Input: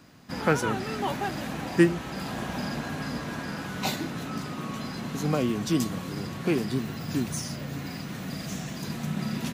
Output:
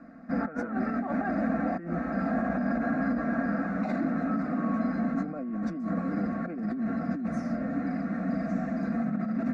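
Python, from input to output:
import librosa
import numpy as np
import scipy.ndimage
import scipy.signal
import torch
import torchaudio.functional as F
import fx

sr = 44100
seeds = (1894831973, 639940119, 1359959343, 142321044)

y = scipy.signal.sosfilt(scipy.signal.butter(2, 1200.0, 'lowpass', fs=sr, output='sos'), x)
y = fx.low_shelf(y, sr, hz=96.0, db=-9.0)
y = y + 0.51 * np.pad(y, (int(4.4 * sr / 1000.0), 0))[:len(y)]
y = fx.over_compress(y, sr, threshold_db=-33.0, ratio=-1.0)
y = fx.fixed_phaser(y, sr, hz=630.0, stages=8)
y = y * 10.0 ** (6.0 / 20.0)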